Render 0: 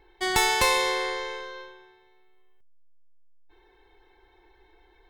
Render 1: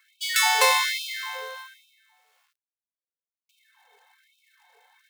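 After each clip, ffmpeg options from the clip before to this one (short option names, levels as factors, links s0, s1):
-af "acrusher=bits=3:mode=log:mix=0:aa=0.000001,afftfilt=real='re*gte(b*sr/1024,420*pow(2300/420,0.5+0.5*sin(2*PI*1.2*pts/sr)))':imag='im*gte(b*sr/1024,420*pow(2300/420,0.5+0.5*sin(2*PI*1.2*pts/sr)))':win_size=1024:overlap=0.75,volume=1.41"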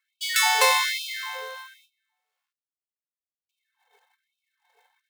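-af "agate=range=0.158:threshold=0.00112:ratio=16:detection=peak"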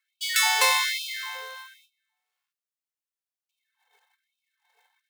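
-af "highpass=f=1000:p=1"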